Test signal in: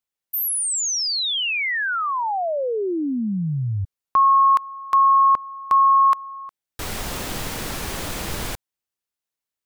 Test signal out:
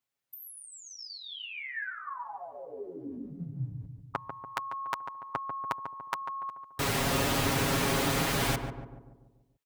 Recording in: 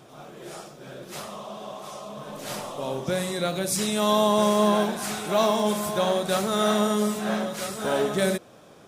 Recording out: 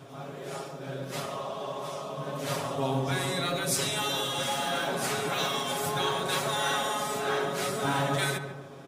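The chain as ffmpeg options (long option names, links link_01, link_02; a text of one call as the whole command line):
ffmpeg -i in.wav -filter_complex "[0:a]afftfilt=real='re*lt(hypot(re,im),0.708)':imag='im*lt(hypot(re,im),0.708)':win_size=1024:overlap=0.75,highpass=55,afftfilt=real='re*lt(hypot(re,im),0.2)':imag='im*lt(hypot(re,im),0.2)':win_size=1024:overlap=0.75,bass=frequency=250:gain=2,treble=frequency=4000:gain=-4,aecho=1:1:7.3:0.77,asplit=2[link_01][link_02];[link_02]adelay=144,lowpass=frequency=1100:poles=1,volume=-6dB,asplit=2[link_03][link_04];[link_04]adelay=144,lowpass=frequency=1100:poles=1,volume=0.55,asplit=2[link_05][link_06];[link_06]adelay=144,lowpass=frequency=1100:poles=1,volume=0.55,asplit=2[link_07][link_08];[link_08]adelay=144,lowpass=frequency=1100:poles=1,volume=0.55,asplit=2[link_09][link_10];[link_10]adelay=144,lowpass=frequency=1100:poles=1,volume=0.55,asplit=2[link_11][link_12];[link_12]adelay=144,lowpass=frequency=1100:poles=1,volume=0.55,asplit=2[link_13][link_14];[link_14]adelay=144,lowpass=frequency=1100:poles=1,volume=0.55[link_15];[link_03][link_05][link_07][link_09][link_11][link_13][link_15]amix=inputs=7:normalize=0[link_16];[link_01][link_16]amix=inputs=2:normalize=0" out.wav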